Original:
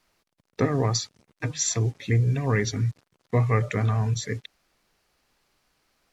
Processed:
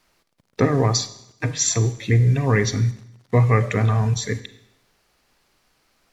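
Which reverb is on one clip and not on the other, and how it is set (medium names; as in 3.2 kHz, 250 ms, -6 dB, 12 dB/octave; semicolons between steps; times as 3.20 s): Schroeder reverb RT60 0.78 s, combs from 33 ms, DRR 13 dB; trim +5 dB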